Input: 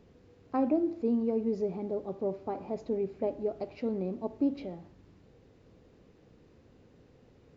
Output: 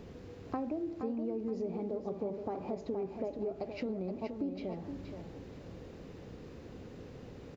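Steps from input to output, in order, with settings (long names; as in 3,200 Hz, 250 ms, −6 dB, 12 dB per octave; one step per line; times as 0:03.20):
in parallel at −2 dB: brickwall limiter −27.5 dBFS, peak gain reduction 10.5 dB
on the sum: downward compressor 5 to 1, threshold −41 dBFS, peak gain reduction 18 dB
repeating echo 472 ms, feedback 31%, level −7.5 dB
level +5 dB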